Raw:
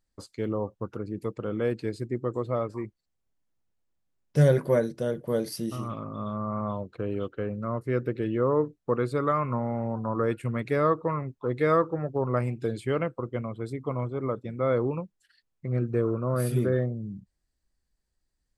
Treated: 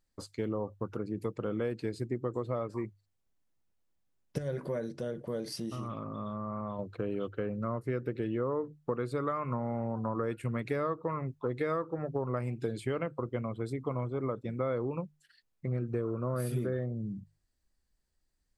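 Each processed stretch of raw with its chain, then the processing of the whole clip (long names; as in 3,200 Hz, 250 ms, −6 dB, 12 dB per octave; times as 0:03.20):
0:04.38–0:06.79: low-pass filter 8,100 Hz + downward compressor 2 to 1, threshold −36 dBFS
whole clip: downward compressor, threshold −29 dBFS; mains-hum notches 50/100/150 Hz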